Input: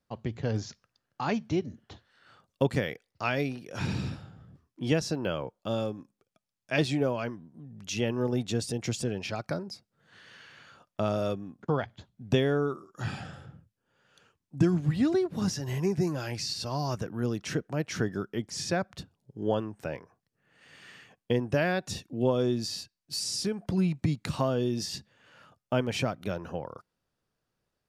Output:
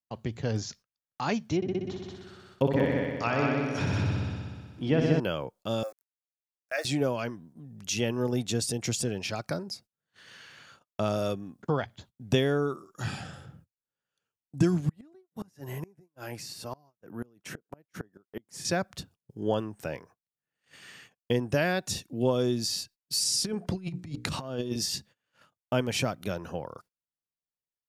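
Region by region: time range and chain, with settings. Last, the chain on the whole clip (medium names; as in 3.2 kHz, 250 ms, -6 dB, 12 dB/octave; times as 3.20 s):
1.56–5.20 s: low-pass that closes with the level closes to 1.9 kHz, closed at -26.5 dBFS + multi-head delay 62 ms, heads all three, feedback 58%, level -6 dB
5.83–6.85 s: elliptic high-pass 440 Hz, stop band 70 dB + small samples zeroed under -51 dBFS + static phaser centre 630 Hz, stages 8
14.89–18.65 s: high-pass 230 Hz 6 dB/octave + peaking EQ 5 kHz -14 dB 1.9 oct + inverted gate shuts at -25 dBFS, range -28 dB
23.44–24.76 s: treble shelf 7.4 kHz -10.5 dB + hum notches 60/120/180/240/300/360/420/480 Hz + compressor with a negative ratio -32 dBFS, ratio -0.5
whole clip: gate -54 dBFS, range -25 dB; treble shelf 5.4 kHz +10 dB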